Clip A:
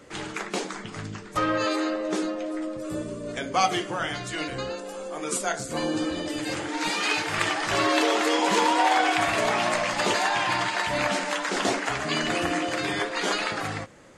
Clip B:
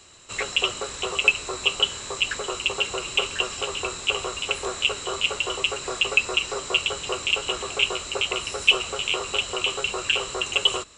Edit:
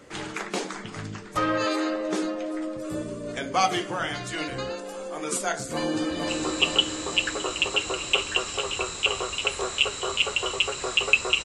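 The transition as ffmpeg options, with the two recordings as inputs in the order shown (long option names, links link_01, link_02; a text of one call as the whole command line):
ffmpeg -i cue0.wav -i cue1.wav -filter_complex "[0:a]apad=whole_dur=11.44,atrim=end=11.44,atrim=end=6.292[link_01];[1:a]atrim=start=1.328:end=6.48[link_02];[link_01][link_02]acrossfade=duration=0.004:curve1=hsin:curve2=hsin,asplit=2[link_03][link_04];[link_04]afade=type=in:start_time=5.73:duration=0.01,afade=type=out:start_time=6.29:duration=0.01,aecho=0:1:460|920|1380|1840|2300|2760|3220|3680|4140:0.668344|0.401006|0.240604|0.144362|0.0866174|0.0519704|0.0311823|0.0187094|0.0112256[link_05];[link_03][link_05]amix=inputs=2:normalize=0" out.wav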